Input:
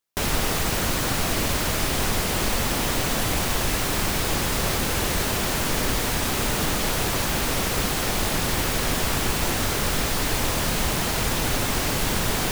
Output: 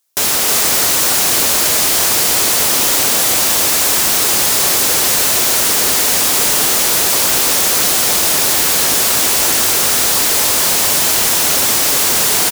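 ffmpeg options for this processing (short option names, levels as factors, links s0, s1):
-filter_complex "[0:a]highpass=69,bass=f=250:g=-12,treble=f=4000:g=10,asoftclip=type=hard:threshold=0.112,asplit=2[s0][s1];[s1]aecho=0:1:315:0.562[s2];[s0][s2]amix=inputs=2:normalize=0,volume=2.51"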